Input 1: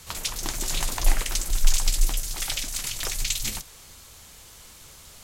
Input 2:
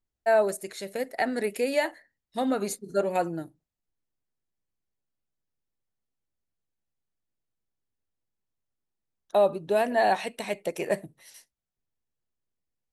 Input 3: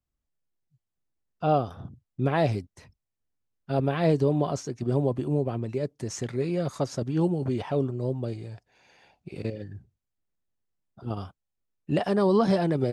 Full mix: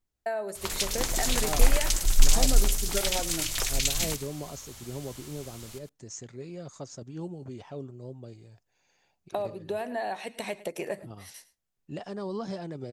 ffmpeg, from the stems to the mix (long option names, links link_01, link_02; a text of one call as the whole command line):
ffmpeg -i stem1.wav -i stem2.wav -i stem3.wav -filter_complex "[0:a]adelay=550,volume=0dB,asplit=2[link_01][link_02];[link_02]volume=-11.5dB[link_03];[1:a]acompressor=threshold=-34dB:ratio=5,volume=3dB,asplit=2[link_04][link_05];[link_05]volume=-18dB[link_06];[2:a]lowpass=frequency=7000:width_type=q:width=3.8,volume=-13dB[link_07];[link_03][link_06]amix=inputs=2:normalize=0,aecho=0:1:106:1[link_08];[link_01][link_04][link_07][link_08]amix=inputs=4:normalize=0" out.wav